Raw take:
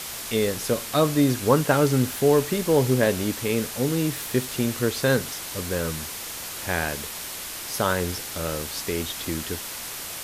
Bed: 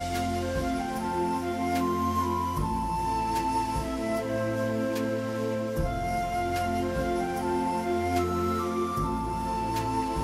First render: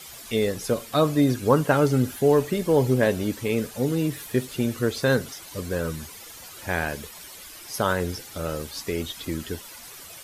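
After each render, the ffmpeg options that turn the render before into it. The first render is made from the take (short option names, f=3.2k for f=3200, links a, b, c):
-af "afftdn=nr=12:nf=-35"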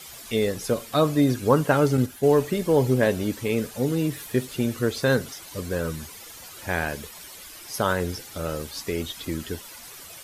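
-filter_complex "[0:a]asettb=1/sr,asplit=3[a][b][c];[a]atrim=end=1.974[d];[b]atrim=start=1.97:end=2.42,asetpts=PTS-STARTPTS,afade=t=in:d=0.004:c=qsin,afade=t=out:st=0.446:d=0.004:c=qsin,agate=range=-6dB:threshold=-25dB:ratio=16:release=100:detection=peak[e];[c]atrim=start=2.416[f];[d][e]acrossfade=d=0.004:c1=hsin:c2=qsin[g];[g][f]acrossfade=d=0.004:c1=qsin:c2=hsin"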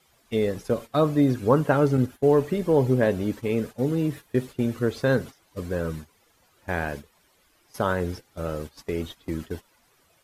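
-af "agate=range=-14dB:threshold=-33dB:ratio=16:detection=peak,highshelf=f=2.7k:g=-11"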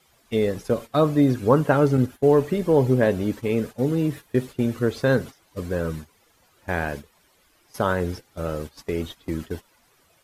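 -af "volume=2dB"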